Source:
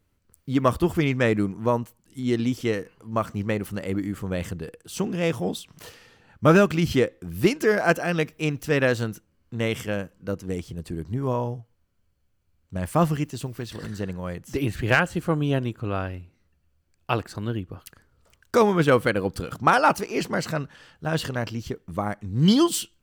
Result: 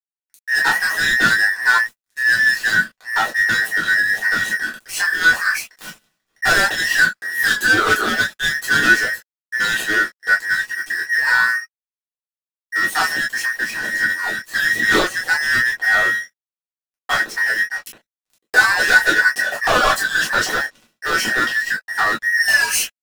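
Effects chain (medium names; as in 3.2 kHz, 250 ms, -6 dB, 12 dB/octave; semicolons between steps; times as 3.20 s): every band turned upside down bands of 2 kHz; high-pass 170 Hz 12 dB/octave; waveshaping leveller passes 5; word length cut 10-bit, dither none; reverberation, pre-delay 3 ms, DRR -4 dB; trim -12 dB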